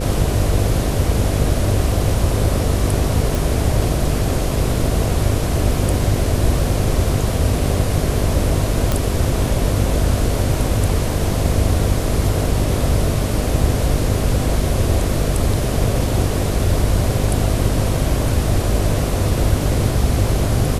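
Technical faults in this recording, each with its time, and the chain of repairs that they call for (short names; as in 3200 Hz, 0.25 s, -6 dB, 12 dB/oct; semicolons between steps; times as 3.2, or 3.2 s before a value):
buzz 50 Hz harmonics 10 -22 dBFS
3.35 pop
8.92 pop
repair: de-click; de-hum 50 Hz, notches 10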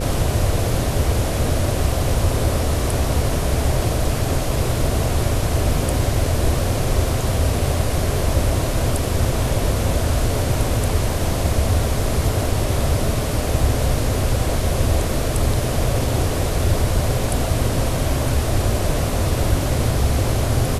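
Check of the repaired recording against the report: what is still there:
none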